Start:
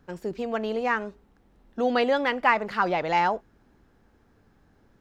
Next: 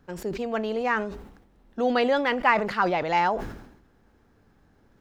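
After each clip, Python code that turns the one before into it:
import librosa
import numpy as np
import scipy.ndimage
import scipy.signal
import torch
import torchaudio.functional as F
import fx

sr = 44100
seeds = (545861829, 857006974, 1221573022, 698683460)

y = fx.sustainer(x, sr, db_per_s=69.0)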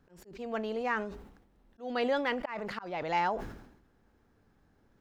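y = fx.auto_swell(x, sr, attack_ms=270.0)
y = y * 10.0 ** (-6.5 / 20.0)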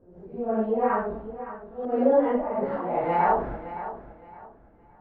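y = fx.phase_scramble(x, sr, seeds[0], window_ms=200)
y = fx.filter_lfo_lowpass(y, sr, shape='saw_up', hz=0.54, low_hz=550.0, high_hz=1500.0, q=1.2)
y = fx.echo_feedback(y, sr, ms=565, feedback_pct=27, wet_db=-13)
y = y * 10.0 ** (8.0 / 20.0)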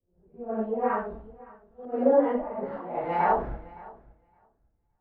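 y = fx.band_widen(x, sr, depth_pct=70)
y = y * 10.0 ** (-4.0 / 20.0)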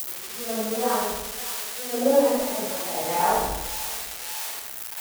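y = x + 0.5 * 10.0 ** (-18.0 / 20.0) * np.diff(np.sign(x), prepend=np.sign(x[:1]))
y = fx.echo_feedback(y, sr, ms=79, feedback_pct=55, wet_db=-5)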